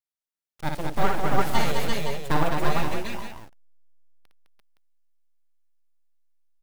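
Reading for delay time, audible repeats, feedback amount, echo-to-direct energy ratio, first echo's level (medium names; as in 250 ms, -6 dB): 58 ms, 4, no regular repeats, 2.0 dB, -4.5 dB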